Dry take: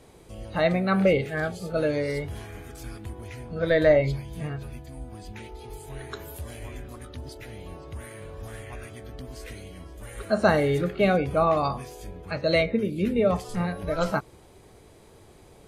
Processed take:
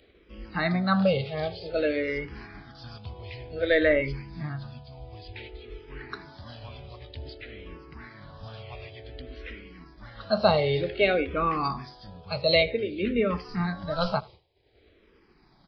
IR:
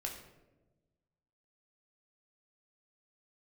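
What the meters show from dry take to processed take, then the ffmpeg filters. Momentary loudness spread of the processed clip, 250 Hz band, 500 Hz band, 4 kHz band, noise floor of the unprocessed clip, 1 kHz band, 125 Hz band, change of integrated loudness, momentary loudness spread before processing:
22 LU, -2.5 dB, -2.5 dB, +5.0 dB, -52 dBFS, -1.0 dB, -3.0 dB, -1.5 dB, 20 LU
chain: -filter_complex "[0:a]agate=range=-33dB:threshold=-39dB:ratio=3:detection=peak,highshelf=f=2.4k:g=10,acompressor=mode=upward:threshold=-42dB:ratio=2.5,aecho=1:1:79:0.0708,aresample=11025,aresample=44100,asplit=2[a][b];[b]afreqshift=-0.54[c];[a][c]amix=inputs=2:normalize=1"

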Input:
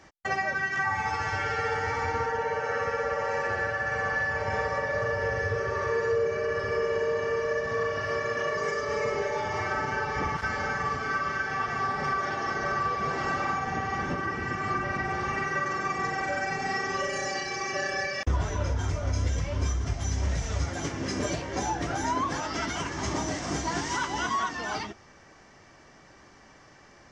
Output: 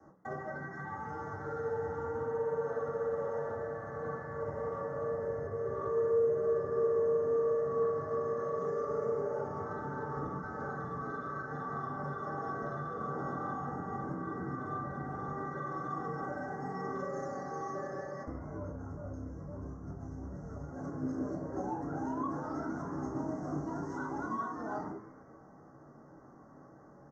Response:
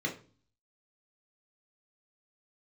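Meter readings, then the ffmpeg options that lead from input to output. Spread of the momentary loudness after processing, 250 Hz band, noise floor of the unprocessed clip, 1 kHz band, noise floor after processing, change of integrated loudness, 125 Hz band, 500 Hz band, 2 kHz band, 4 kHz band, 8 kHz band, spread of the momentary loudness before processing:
13 LU, -3.0 dB, -54 dBFS, -9.5 dB, -55 dBFS, -7.5 dB, -9.0 dB, -3.0 dB, -18.0 dB, under -30 dB, under -20 dB, 3 LU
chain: -filter_complex "[0:a]lowshelf=f=280:t=q:w=1.5:g=7.5,acrossover=split=140|730|2600[a][b][c][d];[b]acrusher=bits=4:mode=log:mix=0:aa=0.000001[e];[a][e][c][d]amix=inputs=4:normalize=0,acompressor=threshold=-32dB:ratio=3,flanger=delay=4.2:depth=8.7:regen=81:speed=0.77:shape=triangular,asuperstop=centerf=2900:order=8:qfactor=0.65,bass=f=250:g=-13,treble=f=4k:g=-5,asplit=5[f][g][h][i][j];[g]adelay=149,afreqshift=120,volume=-16dB[k];[h]adelay=298,afreqshift=240,volume=-24dB[l];[i]adelay=447,afreqshift=360,volume=-31.9dB[m];[j]adelay=596,afreqshift=480,volume=-39.9dB[n];[f][k][l][m][n]amix=inputs=5:normalize=0,adynamicsmooth=sensitivity=5:basefreq=4.7k,bandreject=f=60:t=h:w=6,bandreject=f=120:t=h:w=6,bandreject=f=180:t=h:w=6,bandreject=f=240:t=h:w=6,bandreject=f=300:t=h:w=6,bandreject=f=360:t=h:w=6,bandreject=f=420:t=h:w=6,bandreject=f=480:t=h:w=6,bandreject=f=540:t=h:w=6,bandreject=f=600:t=h:w=6[o];[1:a]atrim=start_sample=2205[p];[o][p]afir=irnorm=-1:irlink=0"

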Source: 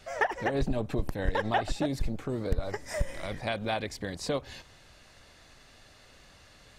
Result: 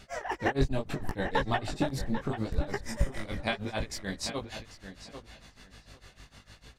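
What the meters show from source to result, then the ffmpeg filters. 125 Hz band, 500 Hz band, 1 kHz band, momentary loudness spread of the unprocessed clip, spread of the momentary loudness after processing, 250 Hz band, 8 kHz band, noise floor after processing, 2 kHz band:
+0.5 dB, -2.5 dB, -1.5 dB, 7 LU, 18 LU, +0.5 dB, +2.0 dB, -60 dBFS, -1.0 dB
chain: -filter_complex "[0:a]equalizer=f=570:t=o:w=0.66:g=-4,aeval=exprs='val(0)+0.00141*(sin(2*PI*50*n/s)+sin(2*PI*2*50*n/s)/2+sin(2*PI*3*50*n/s)/3+sin(2*PI*4*50*n/s)/4+sin(2*PI*5*50*n/s)/5)':c=same,tremolo=f=6.6:d=0.99,flanger=delay=15:depth=7.8:speed=0.73,asplit=2[a][b];[b]adelay=793,lowpass=f=3.6k:p=1,volume=-10dB,asplit=2[c][d];[d]adelay=793,lowpass=f=3.6k:p=1,volume=0.18,asplit=2[e][f];[f]adelay=793,lowpass=f=3.6k:p=1,volume=0.18[g];[c][e][g]amix=inputs=3:normalize=0[h];[a][h]amix=inputs=2:normalize=0,volume=7.5dB"

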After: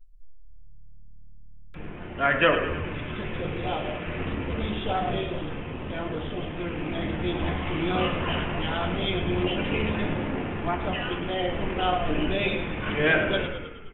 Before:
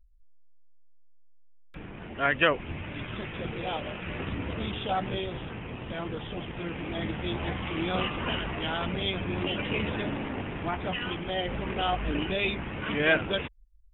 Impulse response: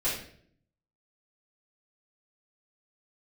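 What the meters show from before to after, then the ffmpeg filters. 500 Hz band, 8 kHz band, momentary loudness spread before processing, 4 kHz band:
+4.0 dB, n/a, 12 LU, +1.0 dB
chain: -filter_complex "[0:a]asplit=9[a][b][c][d][e][f][g][h][i];[b]adelay=105,afreqshift=-37,volume=-10dB[j];[c]adelay=210,afreqshift=-74,volume=-14.2dB[k];[d]adelay=315,afreqshift=-111,volume=-18.3dB[l];[e]adelay=420,afreqshift=-148,volume=-22.5dB[m];[f]adelay=525,afreqshift=-185,volume=-26.6dB[n];[g]adelay=630,afreqshift=-222,volume=-30.8dB[o];[h]adelay=735,afreqshift=-259,volume=-34.9dB[p];[i]adelay=840,afreqshift=-296,volume=-39.1dB[q];[a][j][k][l][m][n][o][p][q]amix=inputs=9:normalize=0,asplit=2[r][s];[1:a]atrim=start_sample=2205,lowpass=2.3k[t];[s][t]afir=irnorm=-1:irlink=0,volume=-10dB[u];[r][u]amix=inputs=2:normalize=0"

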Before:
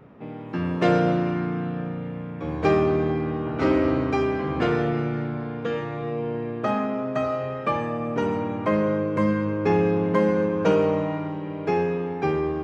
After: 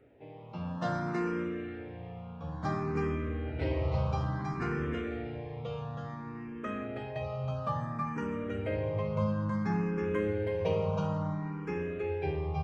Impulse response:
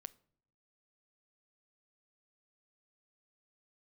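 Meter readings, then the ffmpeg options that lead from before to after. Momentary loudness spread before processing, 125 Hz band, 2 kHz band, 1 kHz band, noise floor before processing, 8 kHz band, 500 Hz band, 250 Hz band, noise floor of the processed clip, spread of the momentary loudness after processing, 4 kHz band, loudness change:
9 LU, -5.0 dB, -9.5 dB, -10.0 dB, -34 dBFS, n/a, -11.5 dB, -11.0 dB, -44 dBFS, 10 LU, -10.0 dB, -10.0 dB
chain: -filter_complex "[0:a]asubboost=boost=6:cutoff=110,asplit=2[a][b];[b]aecho=0:1:322:0.708[c];[a][c]amix=inputs=2:normalize=0,asplit=2[d][e];[e]afreqshift=0.58[f];[d][f]amix=inputs=2:normalize=1,volume=-8dB"

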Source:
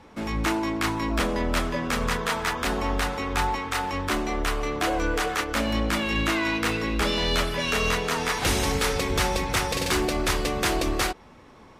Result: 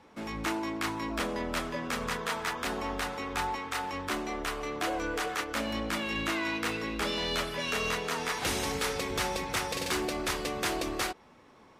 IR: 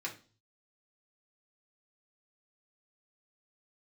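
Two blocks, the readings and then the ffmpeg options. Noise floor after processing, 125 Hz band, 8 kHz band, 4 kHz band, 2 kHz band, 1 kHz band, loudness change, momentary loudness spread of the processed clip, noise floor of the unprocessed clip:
-57 dBFS, -11.5 dB, -6.0 dB, -6.0 dB, -6.0 dB, -6.0 dB, -6.5 dB, 4 LU, -50 dBFS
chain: -af "lowshelf=f=96:g=-11.5,volume=-6dB"

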